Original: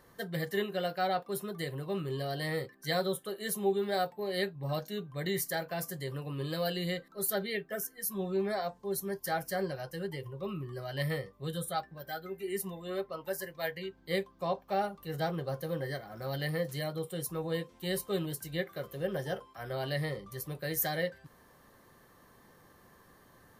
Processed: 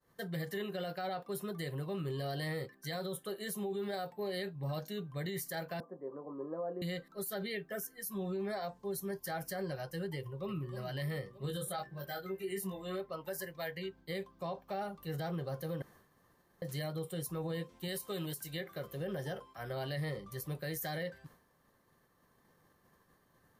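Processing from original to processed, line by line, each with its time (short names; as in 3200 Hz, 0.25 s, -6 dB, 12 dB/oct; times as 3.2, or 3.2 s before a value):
5.8–6.82 elliptic band-pass 230–1100 Hz, stop band 50 dB
10.17–10.75 echo throw 0.31 s, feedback 60%, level -11.5 dB
11.42–13 doubler 21 ms -3.5 dB
15.82–16.62 room tone
17.88–18.61 tilt +1.5 dB/oct
whole clip: bell 160 Hz +3 dB 0.45 oct; expander -52 dBFS; limiter -29 dBFS; gain -1.5 dB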